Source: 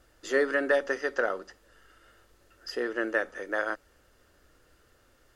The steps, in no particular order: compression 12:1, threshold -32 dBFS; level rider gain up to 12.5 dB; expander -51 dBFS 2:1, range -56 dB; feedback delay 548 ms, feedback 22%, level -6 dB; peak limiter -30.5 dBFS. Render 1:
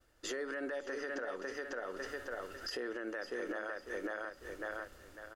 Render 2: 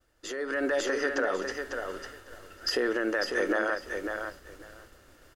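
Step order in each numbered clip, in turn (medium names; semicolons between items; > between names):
expander > level rider > feedback delay > compression > peak limiter; compression > peak limiter > feedback delay > expander > level rider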